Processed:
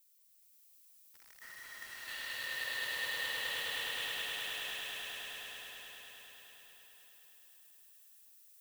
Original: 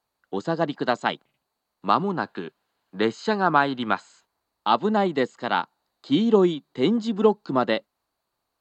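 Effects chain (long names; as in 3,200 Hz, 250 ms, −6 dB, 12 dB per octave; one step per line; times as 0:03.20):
pitch shift by two crossfaded delay taps +1.5 semitones
reverb reduction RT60 1.6 s
Butterworth high-pass 600 Hz 72 dB per octave
high-shelf EQ 6,800 Hz −5 dB
in parallel at −0.5 dB: downward compressor, threshold −35 dBFS, peak gain reduction 19 dB
on the sum: extreme stretch with random phases 25×, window 0.05 s, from 0:02.29
output level in coarse steps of 9 dB
log-companded quantiser 4 bits
background noise violet −68 dBFS
echo that builds up and dies away 104 ms, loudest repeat 5, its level −3.5 dB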